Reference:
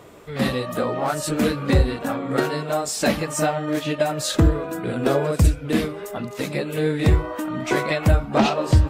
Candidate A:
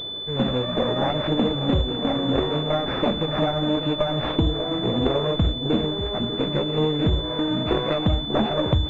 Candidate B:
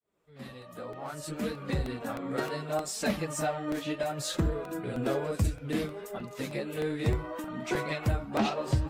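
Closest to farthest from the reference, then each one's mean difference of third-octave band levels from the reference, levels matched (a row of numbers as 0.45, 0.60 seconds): B, A; 3.0, 9.0 decibels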